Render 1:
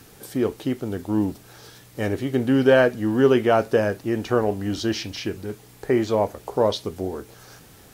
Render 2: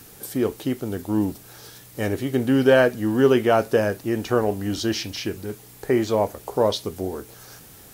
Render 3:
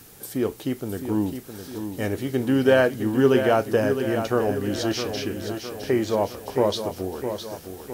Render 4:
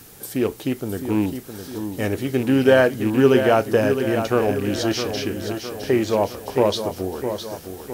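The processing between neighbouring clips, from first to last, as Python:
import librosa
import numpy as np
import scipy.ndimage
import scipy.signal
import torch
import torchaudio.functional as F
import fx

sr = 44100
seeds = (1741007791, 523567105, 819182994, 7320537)

y1 = fx.high_shelf(x, sr, hz=8100.0, db=9.5)
y2 = fx.echo_feedback(y1, sr, ms=661, feedback_pct=53, wet_db=-8.5)
y2 = F.gain(torch.from_numpy(y2), -2.0).numpy()
y3 = fx.rattle_buzz(y2, sr, strikes_db=-29.0, level_db=-29.0)
y3 = F.gain(torch.from_numpy(y3), 3.0).numpy()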